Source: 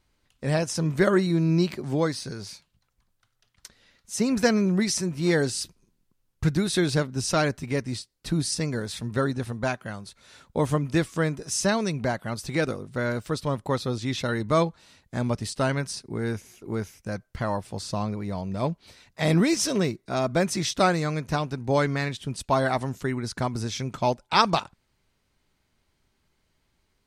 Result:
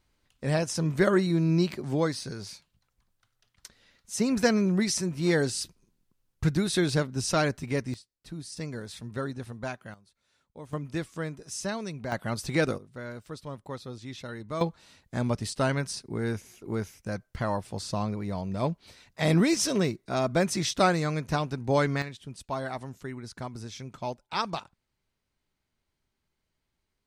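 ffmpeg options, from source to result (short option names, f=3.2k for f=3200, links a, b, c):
-af "asetnsamples=n=441:p=0,asendcmd='7.94 volume volume -14dB;8.57 volume volume -8dB;9.94 volume volume -20dB;10.73 volume volume -9dB;12.12 volume volume 0dB;12.78 volume volume -12dB;14.61 volume volume -1.5dB;22.02 volume volume -10dB',volume=-2dB"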